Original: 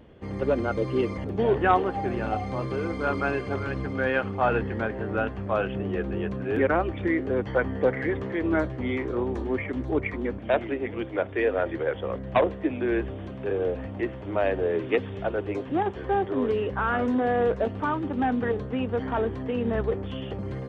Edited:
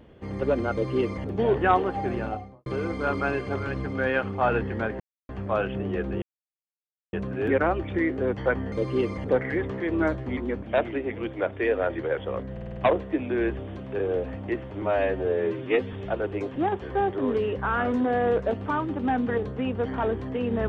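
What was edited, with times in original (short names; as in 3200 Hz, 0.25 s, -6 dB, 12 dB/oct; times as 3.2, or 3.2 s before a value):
0.72–1.29 copy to 7.81
2.12–2.66 studio fade out
5–5.29 mute
6.22 insert silence 0.91 s
8.89–10.13 cut
12.28 stutter 0.05 s, 6 plays
14.33–15.07 stretch 1.5×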